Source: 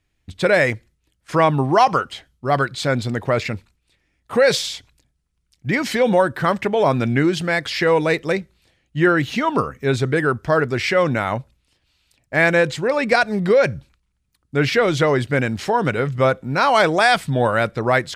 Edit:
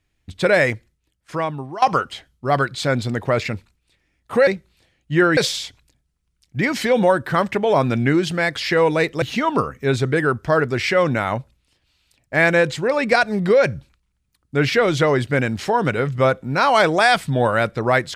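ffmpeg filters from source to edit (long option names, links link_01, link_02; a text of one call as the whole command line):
ffmpeg -i in.wav -filter_complex "[0:a]asplit=5[link_01][link_02][link_03][link_04][link_05];[link_01]atrim=end=1.82,asetpts=PTS-STARTPTS,afade=type=out:start_time=0.63:duration=1.19:silence=0.11885[link_06];[link_02]atrim=start=1.82:end=4.472,asetpts=PTS-STARTPTS,afade=type=in:duration=0.004:curve=hsin:silence=0.11885[link_07];[link_03]atrim=start=8.318:end=9.222[link_08];[link_04]atrim=start=4.468:end=8.322[link_09];[link_05]atrim=start=9.218[link_10];[link_06][link_07]concat=n=2:v=0:a=1[link_11];[link_11][link_08]acrossfade=duration=0.004:curve1=hsin:curve2=hsin[link_12];[link_12][link_09]acrossfade=duration=0.004:curve1=hsin:curve2=hsin[link_13];[link_13][link_10]acrossfade=duration=0.004:curve1=hsin:curve2=hsin" out.wav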